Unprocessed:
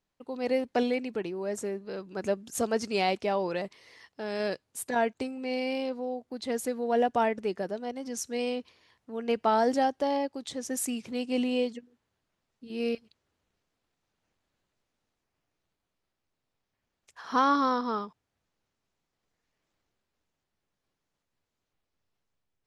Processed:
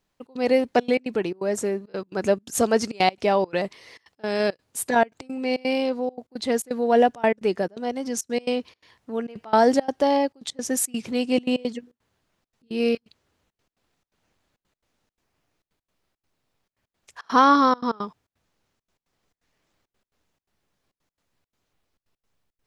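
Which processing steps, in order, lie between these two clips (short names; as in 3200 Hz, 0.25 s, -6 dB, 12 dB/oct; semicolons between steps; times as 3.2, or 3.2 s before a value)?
step gate "xxx.xxxxx.x." 170 bpm -24 dB; gain +8 dB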